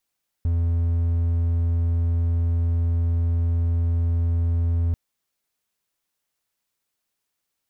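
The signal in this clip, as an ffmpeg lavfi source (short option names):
-f lavfi -i "aevalsrc='0.15*(1-4*abs(mod(84.4*t+0.25,1)-0.5))':d=4.49:s=44100"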